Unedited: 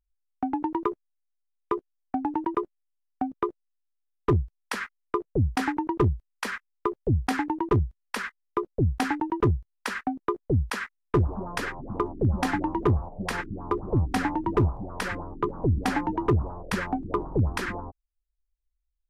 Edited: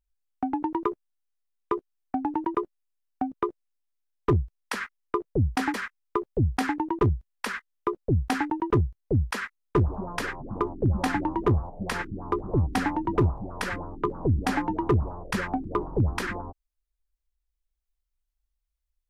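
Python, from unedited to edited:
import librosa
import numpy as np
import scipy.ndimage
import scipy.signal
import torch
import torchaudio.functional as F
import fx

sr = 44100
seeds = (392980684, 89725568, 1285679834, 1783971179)

y = fx.edit(x, sr, fx.cut(start_s=5.74, length_s=0.7),
    fx.cut(start_s=9.72, length_s=0.69), tone=tone)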